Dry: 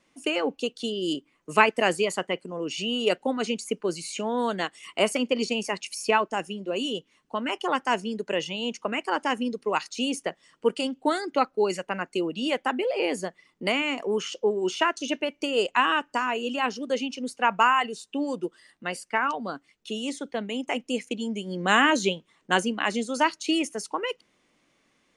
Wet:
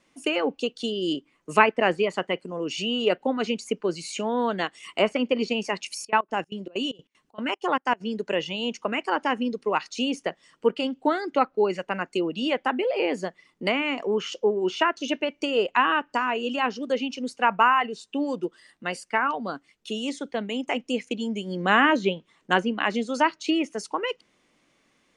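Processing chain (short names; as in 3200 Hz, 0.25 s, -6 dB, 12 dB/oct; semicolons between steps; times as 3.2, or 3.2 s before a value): treble ducked by the level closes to 2600 Hz, closed at -20.5 dBFS; 5.95–8 step gate ".x.xx.xx.xx" 191 bpm -24 dB; gain +1.5 dB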